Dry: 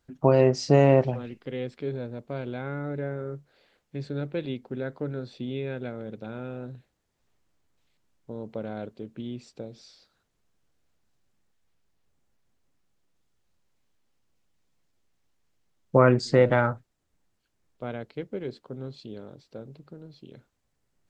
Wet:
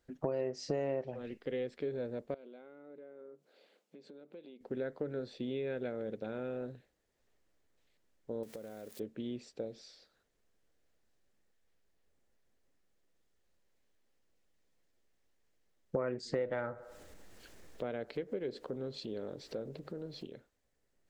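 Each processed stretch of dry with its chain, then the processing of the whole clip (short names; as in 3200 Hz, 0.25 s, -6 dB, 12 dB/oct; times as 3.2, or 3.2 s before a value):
2.34–4.61 bell 1800 Hz -9 dB 0.34 oct + compressor 16:1, threshold -45 dBFS + brick-wall FIR high-pass 160 Hz
8.43–9 switching spikes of -36 dBFS + compressor 16:1, threshold -40 dBFS
16.35–20.27 upward compressor, threshold -31 dBFS + band-limited delay 94 ms, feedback 51%, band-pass 740 Hz, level -20.5 dB
whole clip: graphic EQ 125/500/1000 Hz -6/+6/-3 dB; compressor 5:1, threshold -30 dBFS; bell 1800 Hz +4.5 dB 0.34 oct; gain -3.5 dB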